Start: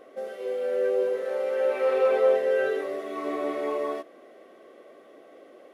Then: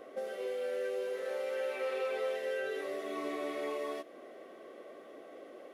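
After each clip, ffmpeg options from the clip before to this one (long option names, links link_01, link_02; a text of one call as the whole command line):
ffmpeg -i in.wav -filter_complex "[0:a]acrossover=split=890|1900[link_01][link_02][link_03];[link_01]acompressor=threshold=-37dB:ratio=4[link_04];[link_02]acompressor=threshold=-51dB:ratio=4[link_05];[link_03]acompressor=threshold=-44dB:ratio=4[link_06];[link_04][link_05][link_06]amix=inputs=3:normalize=0" out.wav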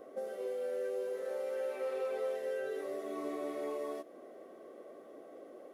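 ffmpeg -i in.wav -af "equalizer=frequency=2700:width=0.66:gain=-10.5" out.wav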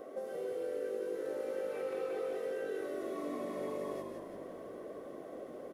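ffmpeg -i in.wav -filter_complex "[0:a]acompressor=threshold=-47dB:ratio=2,asplit=8[link_01][link_02][link_03][link_04][link_05][link_06][link_07][link_08];[link_02]adelay=171,afreqshift=-50,volume=-4.5dB[link_09];[link_03]adelay=342,afreqshift=-100,volume=-10.3dB[link_10];[link_04]adelay=513,afreqshift=-150,volume=-16.2dB[link_11];[link_05]adelay=684,afreqshift=-200,volume=-22dB[link_12];[link_06]adelay=855,afreqshift=-250,volume=-27.9dB[link_13];[link_07]adelay=1026,afreqshift=-300,volume=-33.7dB[link_14];[link_08]adelay=1197,afreqshift=-350,volume=-39.6dB[link_15];[link_01][link_09][link_10][link_11][link_12][link_13][link_14][link_15]amix=inputs=8:normalize=0,volume=4.5dB" out.wav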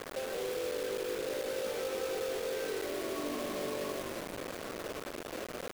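ffmpeg -i in.wav -filter_complex "[0:a]asplit=2[link_01][link_02];[link_02]alimiter=level_in=10dB:limit=-24dB:level=0:latency=1:release=163,volume=-10dB,volume=3dB[link_03];[link_01][link_03]amix=inputs=2:normalize=0,acrusher=bits=5:mix=0:aa=0.000001,volume=-4dB" out.wav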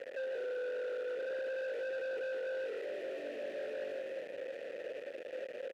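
ffmpeg -i in.wav -filter_complex "[0:a]asplit=3[link_01][link_02][link_03];[link_01]bandpass=frequency=530:width_type=q:width=8,volume=0dB[link_04];[link_02]bandpass=frequency=1840:width_type=q:width=8,volume=-6dB[link_05];[link_03]bandpass=frequency=2480:width_type=q:width=8,volume=-9dB[link_06];[link_04][link_05][link_06]amix=inputs=3:normalize=0,asplit=2[link_07][link_08];[link_08]aeval=exprs='0.0335*sin(PI/2*3.55*val(0)/0.0335)':channel_layout=same,volume=-8.5dB[link_09];[link_07][link_09]amix=inputs=2:normalize=0,volume=-3dB" out.wav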